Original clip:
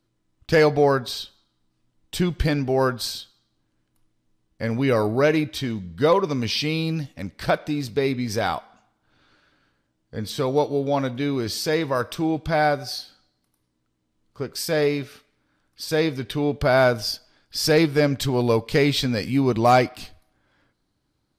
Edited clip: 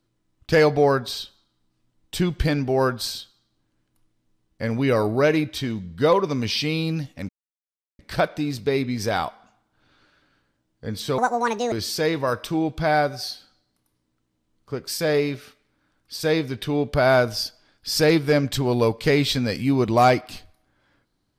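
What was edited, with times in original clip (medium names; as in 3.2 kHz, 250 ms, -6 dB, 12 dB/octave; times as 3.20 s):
7.29 s: insert silence 0.70 s
10.48–11.40 s: speed 170%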